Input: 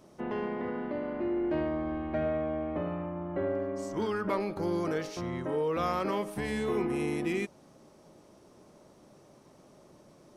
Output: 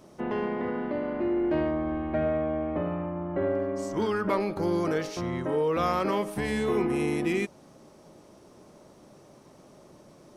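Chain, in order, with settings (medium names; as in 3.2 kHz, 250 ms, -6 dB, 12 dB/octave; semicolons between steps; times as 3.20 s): 1.71–3.42 s: distance through air 130 m; trim +4 dB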